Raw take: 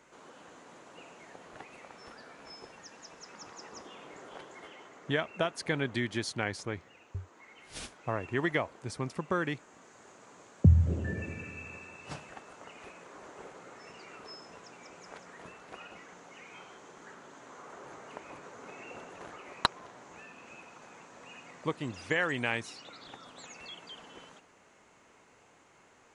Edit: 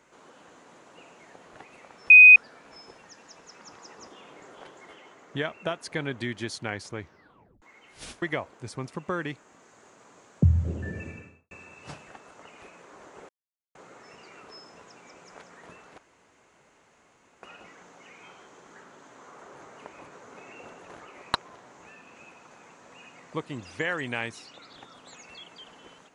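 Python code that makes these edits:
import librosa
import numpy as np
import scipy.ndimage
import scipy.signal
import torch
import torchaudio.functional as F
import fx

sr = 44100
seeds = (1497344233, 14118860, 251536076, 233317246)

y = fx.studio_fade_out(x, sr, start_s=11.29, length_s=0.44)
y = fx.edit(y, sr, fx.insert_tone(at_s=2.1, length_s=0.26, hz=2500.0, db=-7.0),
    fx.tape_stop(start_s=6.76, length_s=0.6),
    fx.cut(start_s=7.96, length_s=0.48),
    fx.insert_silence(at_s=13.51, length_s=0.46),
    fx.insert_room_tone(at_s=15.74, length_s=1.45), tone=tone)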